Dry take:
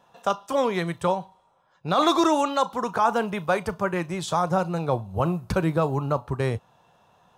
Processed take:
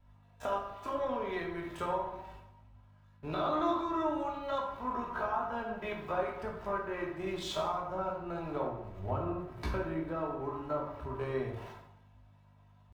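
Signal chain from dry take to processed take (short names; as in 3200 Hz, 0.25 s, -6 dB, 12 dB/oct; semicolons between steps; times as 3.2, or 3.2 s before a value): zero-crossing step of -36 dBFS; gate with hold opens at -32 dBFS; tone controls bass -6 dB, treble -14 dB; comb 3.1 ms, depth 49%; dynamic EQ 8400 Hz, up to -5 dB, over -53 dBFS, Q 1.3; compressor 4:1, threshold -34 dBFS, peak gain reduction 16.5 dB; hum 50 Hz, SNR 17 dB; tempo 0.57×; plate-style reverb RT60 0.99 s, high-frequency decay 0.55×, DRR -1 dB; three-band expander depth 40%; gain -3 dB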